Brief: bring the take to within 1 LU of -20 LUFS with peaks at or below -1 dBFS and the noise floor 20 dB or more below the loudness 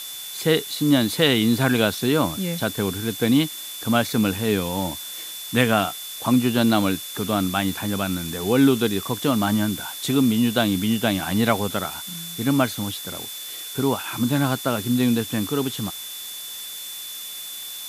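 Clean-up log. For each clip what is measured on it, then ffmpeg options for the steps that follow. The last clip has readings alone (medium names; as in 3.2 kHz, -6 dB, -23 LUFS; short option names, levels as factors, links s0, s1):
steady tone 3.5 kHz; tone level -36 dBFS; noise floor -35 dBFS; noise floor target -43 dBFS; loudness -22.5 LUFS; peak level -1.5 dBFS; loudness target -20.0 LUFS
-> -af "bandreject=f=3500:w=30"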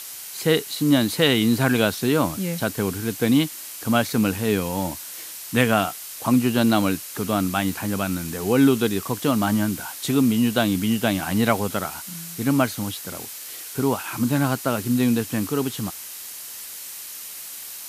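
steady tone not found; noise floor -37 dBFS; noise floor target -43 dBFS
-> -af "afftdn=nr=6:nf=-37"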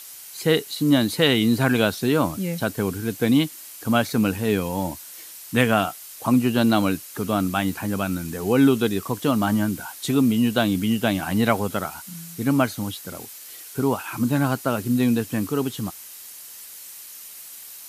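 noise floor -41 dBFS; noise floor target -43 dBFS
-> -af "afftdn=nr=6:nf=-41"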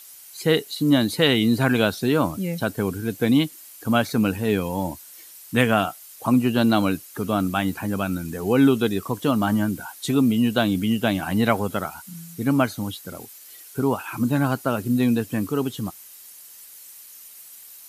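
noise floor -45 dBFS; loudness -22.5 LUFS; peak level -2.0 dBFS; loudness target -20.0 LUFS
-> -af "volume=1.33,alimiter=limit=0.891:level=0:latency=1"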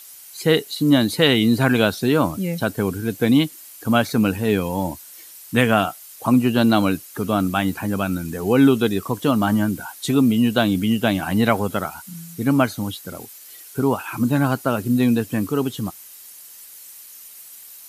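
loudness -20.0 LUFS; peak level -1.0 dBFS; noise floor -42 dBFS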